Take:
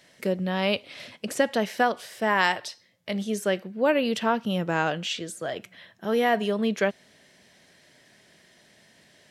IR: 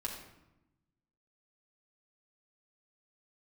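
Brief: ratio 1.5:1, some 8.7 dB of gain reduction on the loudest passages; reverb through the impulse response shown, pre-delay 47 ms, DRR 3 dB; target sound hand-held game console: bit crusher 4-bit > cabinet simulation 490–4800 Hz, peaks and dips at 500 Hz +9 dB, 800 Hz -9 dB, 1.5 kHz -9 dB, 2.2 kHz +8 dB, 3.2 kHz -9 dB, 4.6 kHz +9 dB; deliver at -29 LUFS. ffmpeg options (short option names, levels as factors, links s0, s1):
-filter_complex "[0:a]acompressor=threshold=0.00794:ratio=1.5,asplit=2[s0][s1];[1:a]atrim=start_sample=2205,adelay=47[s2];[s1][s2]afir=irnorm=-1:irlink=0,volume=0.631[s3];[s0][s3]amix=inputs=2:normalize=0,acrusher=bits=3:mix=0:aa=0.000001,highpass=490,equalizer=f=500:t=q:w=4:g=9,equalizer=f=800:t=q:w=4:g=-9,equalizer=f=1500:t=q:w=4:g=-9,equalizer=f=2200:t=q:w=4:g=8,equalizer=f=3200:t=q:w=4:g=-9,equalizer=f=4600:t=q:w=4:g=9,lowpass=f=4800:w=0.5412,lowpass=f=4800:w=1.3066,volume=1.78"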